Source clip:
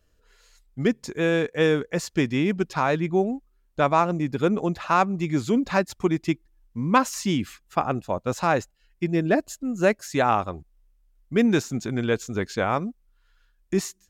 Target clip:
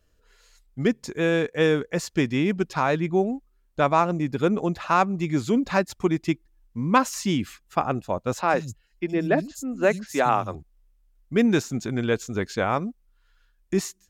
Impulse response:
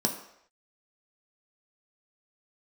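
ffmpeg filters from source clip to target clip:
-filter_complex "[0:a]asettb=1/sr,asplit=3[s0][s1][s2];[s0]atrim=end=8.414[s3];[s1]atrim=start=8.41:end=10.55,asetpts=PTS-STARTPTS,afade=t=in:d=0.004:c=qsin,afade=t=out:st=2.136:d=0.004:c=qsin,acrossover=split=190|4400[s4][s5][s6];[s6]adelay=70[s7];[s4]adelay=110[s8];[s8][s5][s7]amix=inputs=3:normalize=0,atrim=end_sample=94374[s9];[s2]atrim=start=10.546[s10];[s3][s9]acrossfade=d=0.004:c1=hsin:c2=qsin[s11];[s11][s10]acrossfade=d=0.004:c1=qsin:c2=hsin"

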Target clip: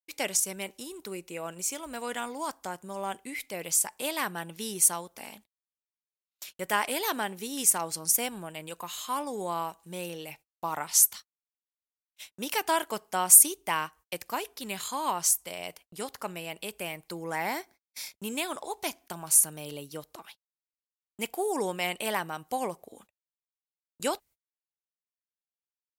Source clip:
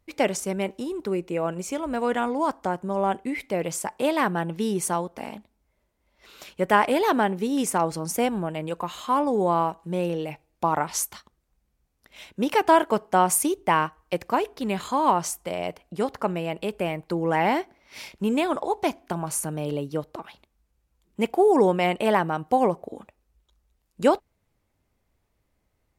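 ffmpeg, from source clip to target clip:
-filter_complex "[0:a]asettb=1/sr,asplit=3[s0][s1][s2];[s0]atrim=end=17.224[s3];[s1]atrim=start=17.22:end=18.16,asetpts=PTS-STARTPTS,afade=t=in:d=0.004:c=qsin,afade=t=out:st=0.936:d=0.004:c=qsin,equalizer=f=2900:w=5.9:g=-12.5[s4];[s2]atrim=start=18.156[s5];[s3][s4]acrossfade=d=0.004:c1=hsin:c2=qsin[s6];[s6][s5]acrossfade=d=0.004:c1=qsin:c2=hsin,agate=range=0.00158:threshold=0.00631:ratio=16:detection=peak,crystalizer=i=9.5:c=0,volume=0.211"

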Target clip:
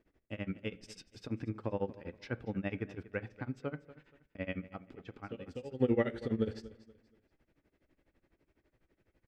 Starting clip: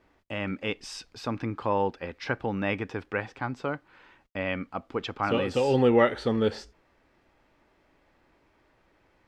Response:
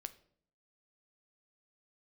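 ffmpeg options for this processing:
-filter_complex "[0:a]equalizer=f=970:t=o:w=1.3:g=-13,asettb=1/sr,asplit=3[s0][s1][s2];[s0]atrim=end=4.674[s3];[s1]atrim=start=4.67:end=5.79,asetpts=PTS-STARTPTS,afade=t=in:d=0.004:c=qsin,afade=t=out:st=1.116:d=0.004:c=qsin,acompressor=threshold=0.0158:ratio=10[s4];[s2]atrim=start=5.786[s5];[s3][s4]acrossfade=d=0.004:c1=hsin:c2=qsin[s6];[s6][s5]acrossfade=d=0.004:c1=qsin:c2=hsin,tremolo=f=12:d=0.97,aecho=1:1:238|476|714:0.141|0.041|0.0119,asplit=2[s7][s8];[1:a]atrim=start_sample=2205,lowpass=2400[s9];[s8][s9]afir=irnorm=-1:irlink=0,volume=1.58[s10];[s7][s10]amix=inputs=2:normalize=0,volume=0.447"

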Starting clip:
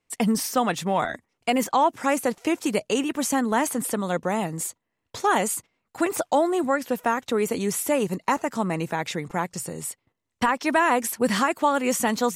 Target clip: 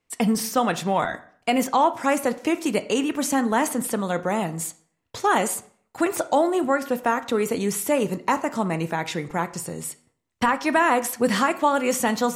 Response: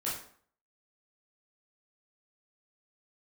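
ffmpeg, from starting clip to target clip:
-filter_complex "[0:a]asplit=2[s0][s1];[1:a]atrim=start_sample=2205,lowpass=5500[s2];[s1][s2]afir=irnorm=-1:irlink=0,volume=0.2[s3];[s0][s3]amix=inputs=2:normalize=0"

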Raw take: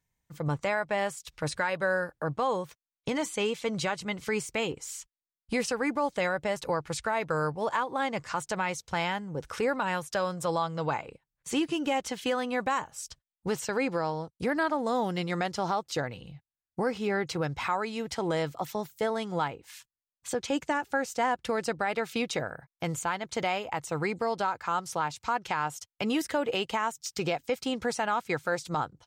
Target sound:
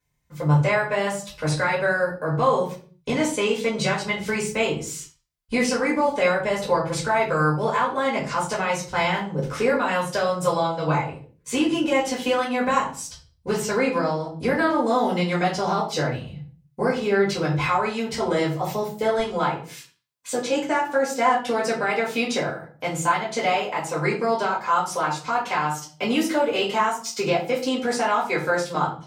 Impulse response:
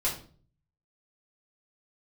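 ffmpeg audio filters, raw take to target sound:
-filter_complex "[0:a]asetnsamples=n=441:p=0,asendcmd='19.19 highpass f 170',highpass=43[s0];[1:a]atrim=start_sample=2205,afade=t=out:st=0.43:d=0.01,atrim=end_sample=19404[s1];[s0][s1]afir=irnorm=-1:irlink=0"

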